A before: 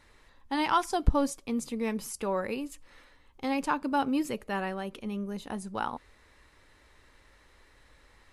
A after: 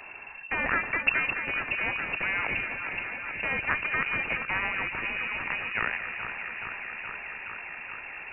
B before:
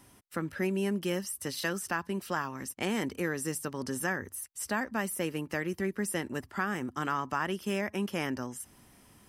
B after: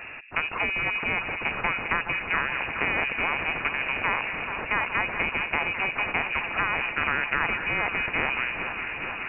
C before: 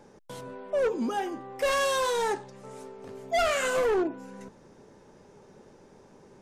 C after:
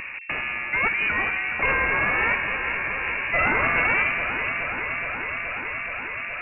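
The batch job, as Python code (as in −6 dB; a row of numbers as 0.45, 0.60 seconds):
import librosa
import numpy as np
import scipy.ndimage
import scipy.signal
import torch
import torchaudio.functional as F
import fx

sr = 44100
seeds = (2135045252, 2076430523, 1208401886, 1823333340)

y = np.r_[np.sort(x[:len(x) // 8 * 8].reshape(-1, 8), axis=1).ravel(), x[len(x) // 8 * 8:]]
y = fx.echo_alternate(y, sr, ms=211, hz=980.0, feedback_pct=86, wet_db=-13)
y = fx.freq_invert(y, sr, carrier_hz=2700)
y = fx.spectral_comp(y, sr, ratio=2.0)
y = librosa.util.normalize(y) * 10.0 ** (-9 / 20.0)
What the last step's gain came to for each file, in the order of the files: −2.0, +8.5, +7.0 decibels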